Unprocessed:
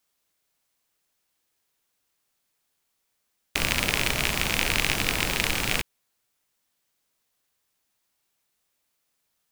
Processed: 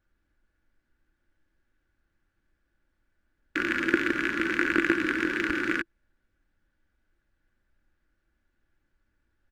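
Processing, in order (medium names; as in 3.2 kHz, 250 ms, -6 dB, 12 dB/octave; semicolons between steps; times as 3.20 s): square wave that keeps the level; two resonant band-passes 720 Hz, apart 2.2 oct; added noise brown -79 dBFS; comb 3.5 ms, depth 35%; trim +5.5 dB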